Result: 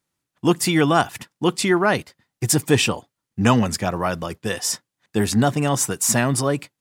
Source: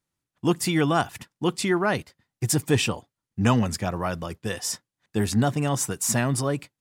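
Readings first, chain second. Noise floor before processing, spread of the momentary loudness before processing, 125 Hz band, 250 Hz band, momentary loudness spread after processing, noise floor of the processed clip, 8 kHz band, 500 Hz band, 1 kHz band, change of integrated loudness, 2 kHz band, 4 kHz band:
under -85 dBFS, 10 LU, +2.5 dB, +4.5 dB, 10 LU, -83 dBFS, +5.5 dB, +5.0 dB, +5.5 dB, +4.5 dB, +5.5 dB, +5.5 dB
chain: low shelf 94 Hz -9 dB; gain +5.5 dB

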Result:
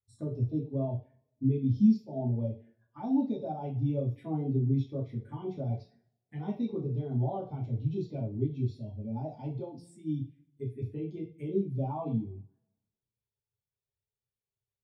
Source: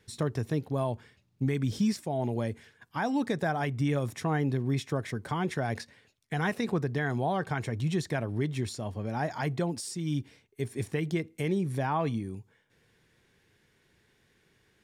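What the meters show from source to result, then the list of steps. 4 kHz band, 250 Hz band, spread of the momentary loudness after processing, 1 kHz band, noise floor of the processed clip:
under -15 dB, 0.0 dB, 12 LU, -9.5 dB, under -85 dBFS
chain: envelope phaser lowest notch 280 Hz, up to 1700 Hz, full sweep at -29 dBFS; two-slope reverb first 0.42 s, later 1.5 s, from -18 dB, DRR -5 dB; spectral expander 1.5:1; gain -4 dB

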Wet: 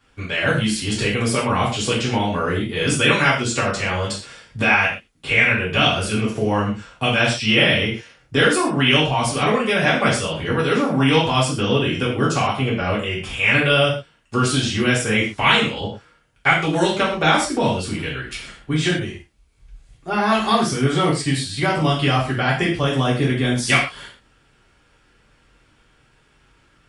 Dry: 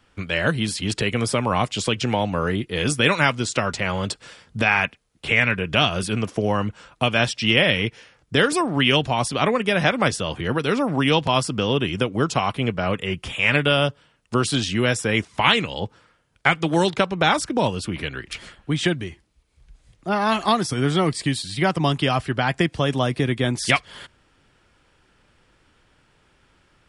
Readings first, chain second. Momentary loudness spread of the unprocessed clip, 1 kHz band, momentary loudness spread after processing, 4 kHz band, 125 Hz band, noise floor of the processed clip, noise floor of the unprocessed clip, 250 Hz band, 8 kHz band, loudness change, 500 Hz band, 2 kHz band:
8 LU, +2.0 dB, 9 LU, +2.5 dB, +2.5 dB, -58 dBFS, -62 dBFS, +2.5 dB, +3.0 dB, +2.5 dB, +2.0 dB, +3.5 dB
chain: non-linear reverb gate 0.16 s falling, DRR -6.5 dB; gain -4.5 dB

